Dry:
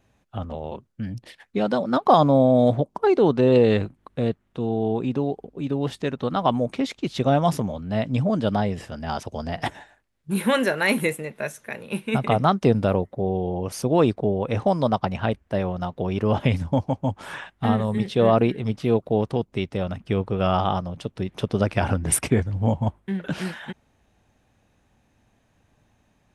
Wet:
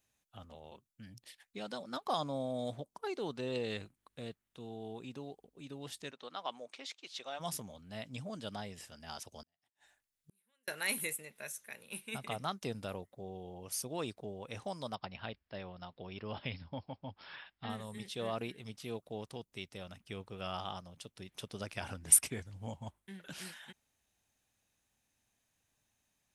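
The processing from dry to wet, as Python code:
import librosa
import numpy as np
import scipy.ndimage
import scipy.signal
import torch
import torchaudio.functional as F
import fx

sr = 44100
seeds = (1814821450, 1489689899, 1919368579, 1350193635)

y = fx.bandpass_edges(x, sr, low_hz=fx.line((6.1, 340.0), (7.39, 660.0)), high_hz=5700.0, at=(6.1, 7.39), fade=0.02)
y = fx.gate_flip(y, sr, shuts_db=-28.0, range_db=-42, at=(9.42, 10.68))
y = fx.brickwall_lowpass(y, sr, high_hz=5500.0, at=(14.95, 17.7))
y = scipy.signal.lfilter([1.0, -0.9], [1.0], y)
y = F.gain(torch.from_numpy(y), -2.5).numpy()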